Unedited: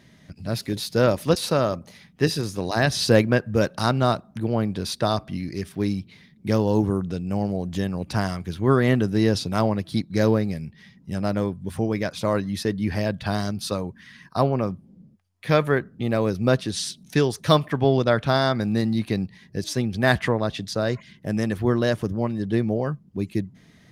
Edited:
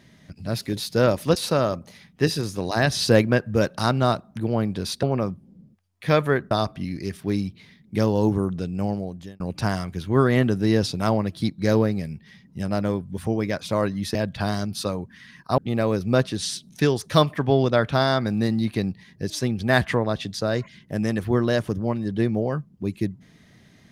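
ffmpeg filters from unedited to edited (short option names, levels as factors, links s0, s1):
-filter_complex "[0:a]asplit=6[s0][s1][s2][s3][s4][s5];[s0]atrim=end=5.032[s6];[s1]atrim=start=14.438:end=15.922[s7];[s2]atrim=start=5.028:end=7.92,asetpts=PTS-STARTPTS,afade=t=out:st=2.332:d=0.56[s8];[s3]atrim=start=7.92:end=12.672,asetpts=PTS-STARTPTS,afade=t=in:d=0.004:c=hsin[s9];[s4]atrim=start=13.008:end=14.442[s10];[s5]atrim=start=15.918[s11];[s6][s7]acrossfade=d=0.004:c1=hsin:c2=hsin[s12];[s8][s9]concat=n=2:v=0:a=1[s13];[s12][s13]acrossfade=d=0.004:c1=hsin:c2=hsin[s14];[s14][s10]acrossfade=d=0.004:c1=hsin:c2=hsin[s15];[s15][s11]acrossfade=d=0.004:c1=hsin:c2=hsin"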